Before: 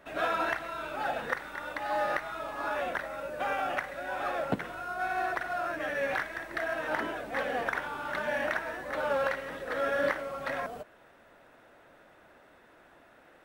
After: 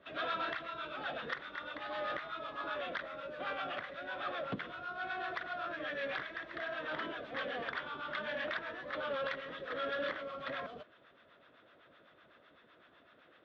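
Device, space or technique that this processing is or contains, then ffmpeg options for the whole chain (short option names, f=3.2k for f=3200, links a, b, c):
guitar amplifier with harmonic tremolo: -filter_complex "[0:a]acrossover=split=740[a][b];[a]aeval=exprs='val(0)*(1-0.7/2+0.7/2*cos(2*PI*7.9*n/s))':c=same[c];[b]aeval=exprs='val(0)*(1-0.7/2-0.7/2*cos(2*PI*7.9*n/s))':c=same[d];[c][d]amix=inputs=2:normalize=0,asoftclip=type=tanh:threshold=-28.5dB,highpass=81,equalizer=f=840:t=q:w=4:g=-8,equalizer=f=1.2k:t=q:w=4:g=4,equalizer=f=3.4k:t=q:w=4:g=10,lowpass=f=4.5k:w=0.5412,lowpass=f=4.5k:w=1.3066,volume=-2dB"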